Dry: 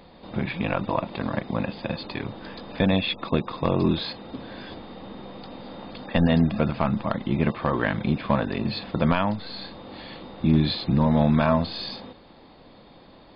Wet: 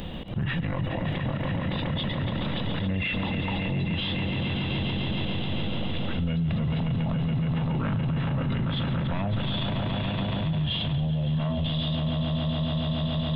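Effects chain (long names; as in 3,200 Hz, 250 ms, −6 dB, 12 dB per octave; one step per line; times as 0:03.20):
bass and treble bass +10 dB, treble +13 dB
volume swells 176 ms
formants moved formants −4 semitones
on a send: echo that builds up and dies away 141 ms, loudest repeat 5, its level −12 dB
on the sum: brickwall limiter −29.5 dBFS, peak gain reduction 26 dB
level +9 dB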